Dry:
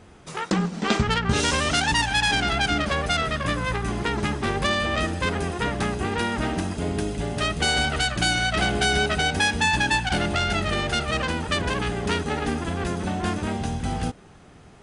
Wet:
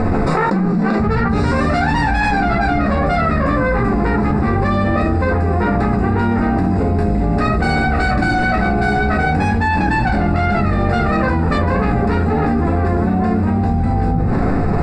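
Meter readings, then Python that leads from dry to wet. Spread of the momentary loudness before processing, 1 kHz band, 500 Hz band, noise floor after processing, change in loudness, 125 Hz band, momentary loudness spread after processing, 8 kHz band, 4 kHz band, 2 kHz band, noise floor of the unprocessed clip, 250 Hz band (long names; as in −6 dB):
7 LU, +8.5 dB, +9.0 dB, −17 dBFS, +7.5 dB, +11.0 dB, 1 LU, below −10 dB, −9.5 dB, +3.5 dB, −48 dBFS, +11.5 dB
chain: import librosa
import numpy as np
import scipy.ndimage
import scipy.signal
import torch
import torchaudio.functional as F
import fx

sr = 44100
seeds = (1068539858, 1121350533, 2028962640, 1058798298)

y = scipy.signal.lfilter(np.full(14, 1.0 / 14), 1.0, x)
y = fx.room_shoebox(y, sr, seeds[0], volume_m3=190.0, walls='furnished', distance_m=2.0)
y = fx.env_flatten(y, sr, amount_pct=100)
y = y * 10.0 ** (-1.0 / 20.0)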